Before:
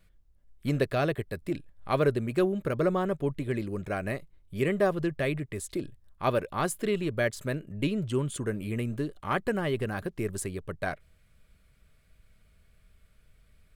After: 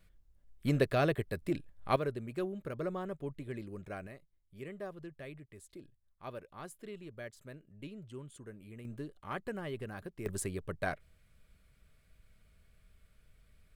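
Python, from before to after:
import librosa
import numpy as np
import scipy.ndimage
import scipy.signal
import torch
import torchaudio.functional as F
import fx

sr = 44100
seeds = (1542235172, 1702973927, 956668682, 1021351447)

y = fx.gain(x, sr, db=fx.steps((0.0, -2.0), (1.96, -11.0), (4.07, -18.0), (8.85, -11.0), (10.26, -3.0)))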